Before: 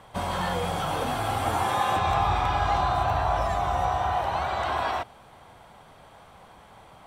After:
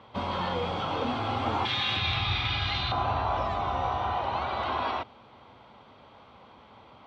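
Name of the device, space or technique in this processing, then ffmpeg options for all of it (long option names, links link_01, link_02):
guitar cabinet: -filter_complex "[0:a]asettb=1/sr,asplit=3[link_01][link_02][link_03];[link_01]atrim=end=1.654[link_04];[link_02]atrim=start=1.65:end=2.92,asetpts=PTS-STARTPTS,afade=type=in:duration=0.004:curve=qsin,afade=type=out:start_time=1.266:duration=0.004:curve=qsin,equalizer=frequency=125:width_type=o:width=1:gain=4,equalizer=frequency=250:width_type=o:width=1:gain=-4,equalizer=frequency=500:width_type=o:width=1:gain=-9,equalizer=frequency=1000:width_type=o:width=1:gain=-11,equalizer=frequency=2000:width_type=o:width=1:gain=7,equalizer=frequency=4000:width_type=o:width=1:gain=11[link_05];[link_03]atrim=start=2.916[link_06];[link_04][link_05]acrossfade=duration=0.004:curve1=hsin:curve2=qsin[link_07];[link_07][link_06]acrossfade=duration=0.004:curve1=qsin:curve2=hsin,highpass=84,equalizer=frequency=160:width_type=q:width=4:gain=-8,equalizer=frequency=240:width_type=q:width=4:gain=5,equalizer=frequency=710:width_type=q:width=4:gain=-6,equalizer=frequency=1700:width_type=q:width=4:gain=-8,lowpass=frequency=4400:width=0.5412,lowpass=frequency=4400:width=1.3066"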